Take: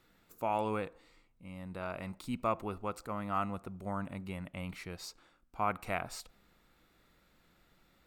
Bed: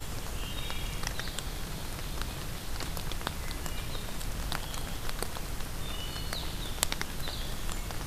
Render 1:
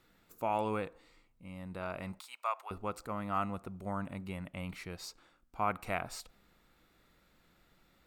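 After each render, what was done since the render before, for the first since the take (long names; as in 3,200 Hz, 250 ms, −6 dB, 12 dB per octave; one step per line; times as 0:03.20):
0:02.20–0:02.71: inverse Chebyshev high-pass filter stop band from 170 Hz, stop band 70 dB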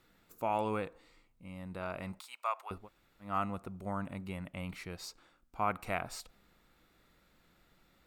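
0:02.81–0:03.27: fill with room tone, crossfade 0.16 s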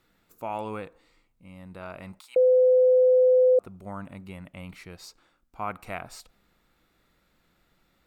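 0:02.36–0:03.59: beep over 508 Hz −15 dBFS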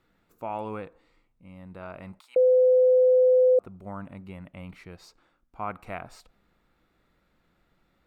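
high-shelf EQ 3,500 Hz −10.5 dB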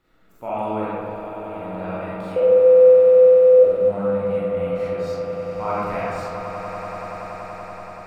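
echo that builds up and dies away 95 ms, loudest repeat 8, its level −13 dB
comb and all-pass reverb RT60 1.8 s, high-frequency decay 0.45×, pre-delay 5 ms, DRR −9 dB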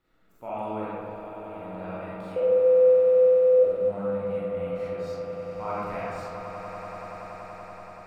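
level −7 dB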